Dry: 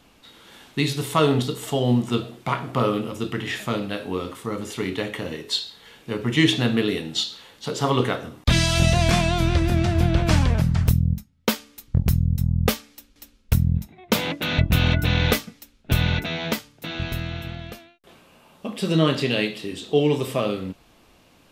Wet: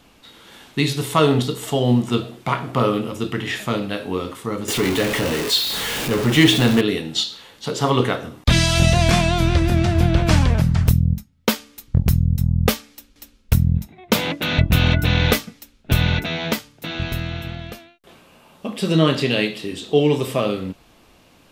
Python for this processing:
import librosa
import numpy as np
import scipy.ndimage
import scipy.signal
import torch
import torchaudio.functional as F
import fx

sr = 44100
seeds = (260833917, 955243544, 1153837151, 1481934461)

y = fx.zero_step(x, sr, step_db=-22.5, at=(4.68, 6.81))
y = y * 10.0 ** (3.0 / 20.0)